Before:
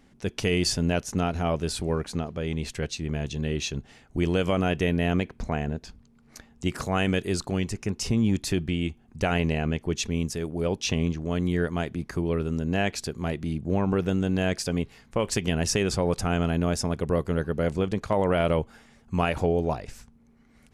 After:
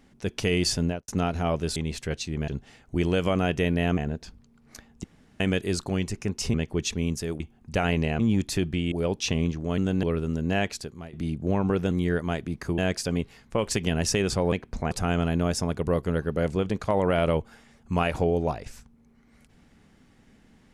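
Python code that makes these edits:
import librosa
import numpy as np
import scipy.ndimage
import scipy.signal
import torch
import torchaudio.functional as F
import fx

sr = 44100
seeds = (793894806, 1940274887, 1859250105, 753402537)

y = fx.studio_fade_out(x, sr, start_s=0.81, length_s=0.27)
y = fx.edit(y, sr, fx.cut(start_s=1.76, length_s=0.72),
    fx.cut(start_s=3.2, length_s=0.5),
    fx.move(start_s=5.19, length_s=0.39, to_s=16.13),
    fx.room_tone_fill(start_s=6.65, length_s=0.36),
    fx.swap(start_s=8.15, length_s=0.72, other_s=9.67, other_length_s=0.86),
    fx.swap(start_s=11.39, length_s=0.87, other_s=14.14, other_length_s=0.25),
    fx.fade_out_to(start_s=12.84, length_s=0.52, floor_db=-19.0), tone=tone)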